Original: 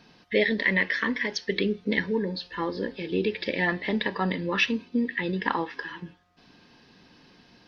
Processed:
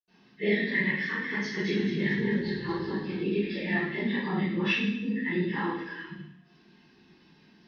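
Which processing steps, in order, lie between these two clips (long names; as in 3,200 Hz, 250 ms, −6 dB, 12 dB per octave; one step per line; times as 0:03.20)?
random phases in long frames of 50 ms
0:00.98–0:03.06: echo with shifted repeats 219 ms, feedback 49%, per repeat −39 Hz, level −6 dB
convolution reverb RT60 0.70 s, pre-delay 76 ms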